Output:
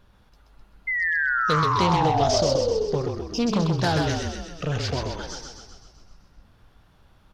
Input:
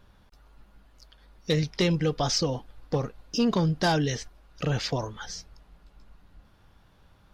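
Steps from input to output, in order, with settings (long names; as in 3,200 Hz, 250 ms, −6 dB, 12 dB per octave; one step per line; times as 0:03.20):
sound drawn into the spectrogram fall, 0:00.87–0:02.83, 420–2,100 Hz −25 dBFS
on a send: echo with shifted repeats 129 ms, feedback 58%, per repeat −31 Hz, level −4 dB
on the sum: highs frequency-modulated by the lows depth 0.25 ms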